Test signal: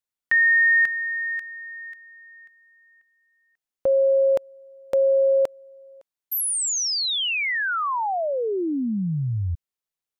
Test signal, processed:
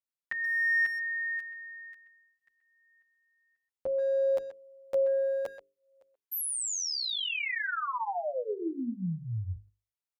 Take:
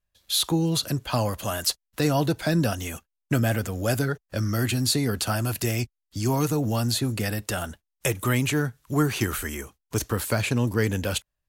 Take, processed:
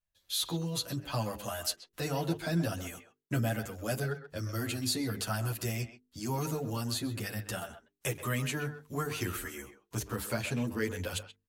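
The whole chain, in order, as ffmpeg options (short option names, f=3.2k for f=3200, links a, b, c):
-filter_complex "[0:a]bandreject=f=50:t=h:w=6,bandreject=f=100:t=h:w=6,bandreject=f=150:t=h:w=6,bandreject=f=200:t=h:w=6,bandreject=f=250:t=h:w=6,bandreject=f=300:t=h:w=6,bandreject=f=350:t=h:w=6,bandreject=f=400:t=h:w=6,bandreject=f=450:t=h:w=6,asplit=2[a][b];[b]adelay=130,highpass=300,lowpass=3.4k,asoftclip=type=hard:threshold=-20dB,volume=-11dB[c];[a][c]amix=inputs=2:normalize=0,asplit=2[d][e];[e]adelay=9.1,afreqshift=0.45[f];[d][f]amix=inputs=2:normalize=1,volume=-5.5dB"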